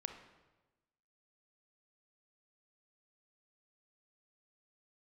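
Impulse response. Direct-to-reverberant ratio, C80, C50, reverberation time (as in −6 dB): 6.0 dB, 10.0 dB, 7.5 dB, 1.1 s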